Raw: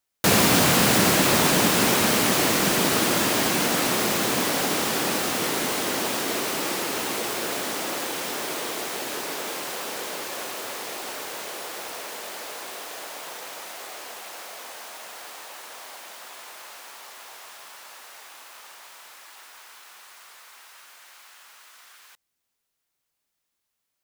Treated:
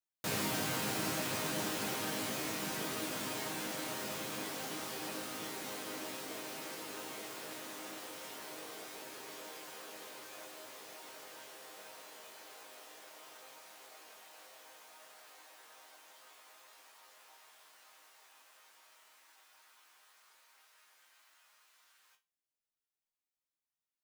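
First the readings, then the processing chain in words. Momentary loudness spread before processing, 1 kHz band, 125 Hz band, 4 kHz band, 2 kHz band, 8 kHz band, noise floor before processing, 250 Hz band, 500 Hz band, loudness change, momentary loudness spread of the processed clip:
22 LU, -17.0 dB, -17.5 dB, -17.0 dB, -17.0 dB, -17.5 dB, -80 dBFS, -17.5 dB, -17.0 dB, -17.0 dB, 22 LU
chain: chord resonator G#2 major, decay 0.26 s; trim -5 dB

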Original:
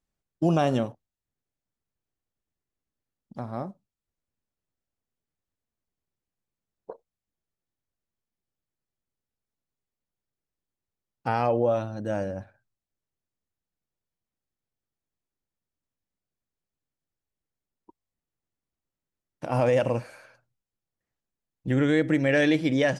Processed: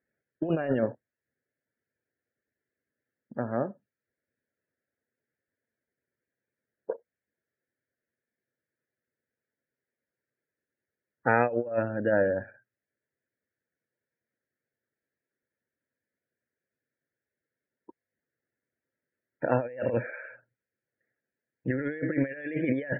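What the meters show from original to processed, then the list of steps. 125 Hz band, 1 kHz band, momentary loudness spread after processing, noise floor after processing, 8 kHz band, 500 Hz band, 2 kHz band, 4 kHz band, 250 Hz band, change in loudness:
-6.0 dB, -3.0 dB, 15 LU, under -85 dBFS, no reading, -2.5 dB, -1.5 dB, under -20 dB, -4.5 dB, -4.0 dB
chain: cabinet simulation 170–2400 Hz, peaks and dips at 180 Hz -9 dB, 310 Hz -3 dB, 500 Hz +3 dB, 780 Hz -8 dB, 1.1 kHz -10 dB, 1.7 kHz +8 dB; compressor with a negative ratio -29 dBFS, ratio -0.5; loudest bins only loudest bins 64; trim +2.5 dB

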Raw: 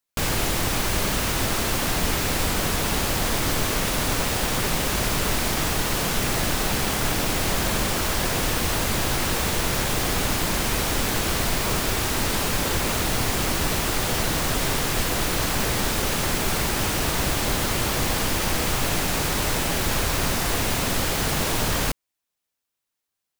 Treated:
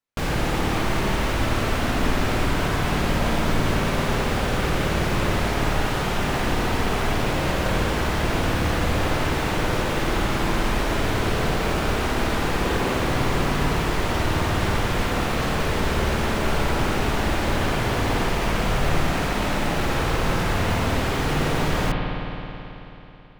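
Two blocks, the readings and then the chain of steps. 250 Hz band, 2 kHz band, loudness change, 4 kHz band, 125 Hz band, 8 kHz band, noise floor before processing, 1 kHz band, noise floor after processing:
+3.0 dB, +0.5 dB, -0.5 dB, -4.0 dB, +3.5 dB, -10.0 dB, -83 dBFS, +2.5 dB, -31 dBFS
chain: low-pass 2.3 kHz 6 dB/octave; spring tank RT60 3.4 s, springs 54 ms, chirp 45 ms, DRR 0 dB

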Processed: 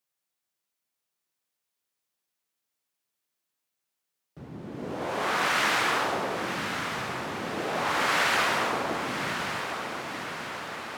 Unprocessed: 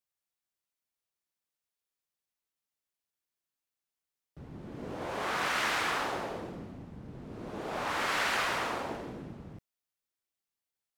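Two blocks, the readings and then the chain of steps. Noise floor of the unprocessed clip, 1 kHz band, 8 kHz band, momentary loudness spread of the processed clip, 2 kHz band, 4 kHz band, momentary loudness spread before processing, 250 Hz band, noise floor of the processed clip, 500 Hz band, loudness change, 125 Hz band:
under -85 dBFS, +6.5 dB, +6.5 dB, 12 LU, +6.5 dB, +6.5 dB, 18 LU, +6.5 dB, -85 dBFS, +6.5 dB, +5.0 dB, +4.5 dB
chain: high-pass 110 Hz 12 dB/octave; on a send: echo that smears into a reverb 1088 ms, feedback 62%, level -7 dB; on the sum: trim +5.5 dB

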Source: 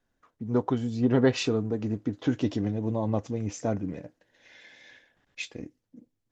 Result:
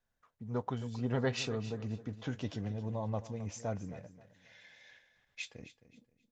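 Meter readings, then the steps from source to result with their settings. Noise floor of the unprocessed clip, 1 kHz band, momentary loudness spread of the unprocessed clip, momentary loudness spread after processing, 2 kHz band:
-79 dBFS, -6.5 dB, 15 LU, 22 LU, -6.0 dB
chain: peaking EQ 310 Hz -11.5 dB 0.77 oct; on a send: feedback delay 265 ms, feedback 27%, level -15 dB; on the sum: trim -6 dB

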